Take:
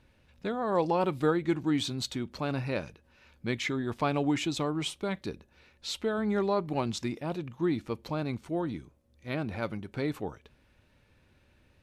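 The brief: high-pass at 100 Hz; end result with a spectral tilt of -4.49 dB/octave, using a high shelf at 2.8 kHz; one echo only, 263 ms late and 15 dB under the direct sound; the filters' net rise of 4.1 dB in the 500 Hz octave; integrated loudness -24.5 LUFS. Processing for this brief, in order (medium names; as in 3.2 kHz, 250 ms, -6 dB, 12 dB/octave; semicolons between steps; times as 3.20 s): high-pass 100 Hz; peaking EQ 500 Hz +5 dB; treble shelf 2.8 kHz +4 dB; delay 263 ms -15 dB; trim +5 dB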